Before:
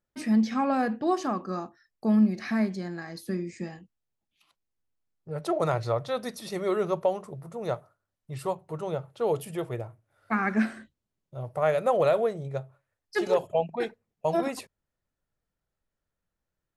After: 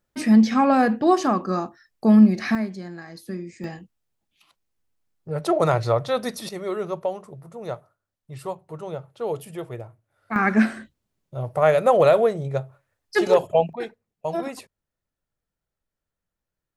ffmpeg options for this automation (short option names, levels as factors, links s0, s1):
-af "asetnsamples=n=441:p=0,asendcmd='2.55 volume volume -1dB;3.64 volume volume 6.5dB;6.49 volume volume -1dB;10.36 volume volume 7dB;13.73 volume volume -1dB',volume=2.51"